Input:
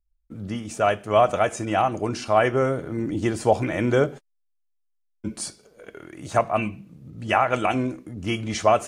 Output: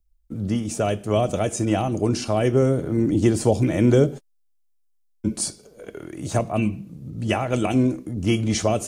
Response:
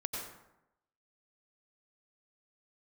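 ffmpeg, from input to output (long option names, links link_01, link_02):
-filter_complex "[0:a]equalizer=frequency=1700:width_type=o:width=2.5:gain=-8.5,acrossover=split=460|2600[link_01][link_02][link_03];[link_02]acompressor=threshold=-35dB:ratio=6[link_04];[link_01][link_04][link_03]amix=inputs=3:normalize=0,volume=7.5dB"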